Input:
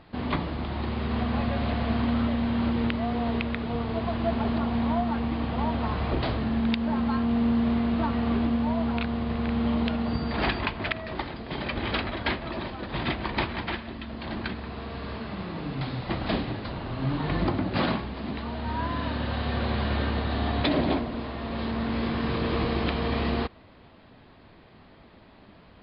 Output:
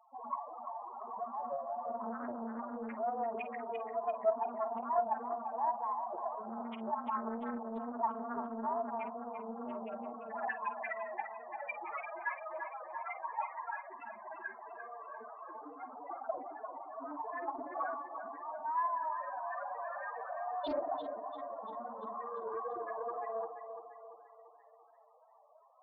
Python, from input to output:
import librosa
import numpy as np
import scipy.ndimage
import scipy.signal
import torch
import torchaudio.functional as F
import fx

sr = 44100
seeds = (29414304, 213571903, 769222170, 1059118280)

y = scipy.signal.sosfilt(scipy.signal.butter(2, 740.0, 'highpass', fs=sr, output='sos'), x)
y = fx.vibrato(y, sr, rate_hz=2.3, depth_cents=60.0)
y = fx.high_shelf(y, sr, hz=2700.0, db=-9.5)
y = fx.spec_topn(y, sr, count=4)
y = fx.doubler(y, sr, ms=49.0, db=-12.5)
y = fx.echo_feedback(y, sr, ms=343, feedback_pct=52, wet_db=-8.5)
y = fx.doppler_dist(y, sr, depth_ms=0.36)
y = F.gain(torch.from_numpy(y), 3.5).numpy()